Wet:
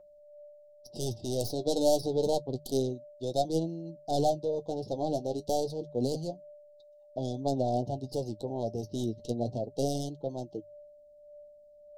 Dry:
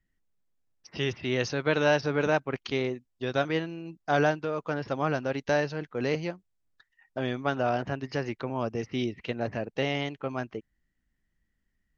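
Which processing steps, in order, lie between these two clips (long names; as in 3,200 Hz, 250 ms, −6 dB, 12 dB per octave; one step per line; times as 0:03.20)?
stylus tracing distortion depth 0.18 ms
elliptic band-stop filter 750–3,900 Hz, stop band 40 dB
steady tone 590 Hz −50 dBFS
mains-hum notches 50/100/150 Hz
flanger 0.29 Hz, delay 5.6 ms, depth 4.8 ms, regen +43%
level +3.5 dB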